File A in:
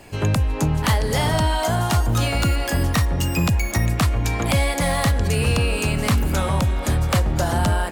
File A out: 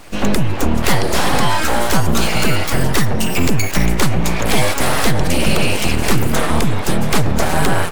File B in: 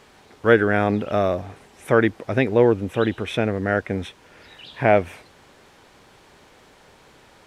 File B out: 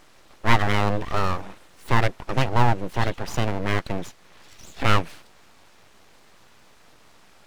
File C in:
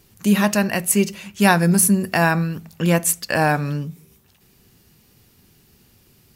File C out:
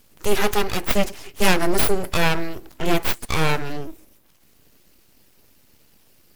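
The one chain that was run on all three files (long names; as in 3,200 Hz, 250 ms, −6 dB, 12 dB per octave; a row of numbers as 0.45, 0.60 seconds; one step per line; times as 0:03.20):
spectral magnitudes quantised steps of 15 dB
full-wave rectification
normalise the peak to −1.5 dBFS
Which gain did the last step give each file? +8.0, +0.5, +1.0 decibels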